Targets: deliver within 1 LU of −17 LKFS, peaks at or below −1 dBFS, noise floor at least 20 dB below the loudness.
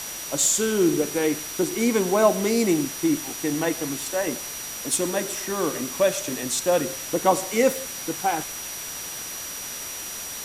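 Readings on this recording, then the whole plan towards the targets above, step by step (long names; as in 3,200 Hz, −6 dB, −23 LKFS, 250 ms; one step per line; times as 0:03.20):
interfering tone 5,800 Hz; level of the tone −36 dBFS; background noise floor −34 dBFS; target noise floor −44 dBFS; integrated loudness −24.0 LKFS; sample peak −5.0 dBFS; target loudness −17.0 LKFS
→ notch filter 5,800 Hz, Q 30
broadband denoise 10 dB, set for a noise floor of −34 dBFS
level +7 dB
brickwall limiter −1 dBFS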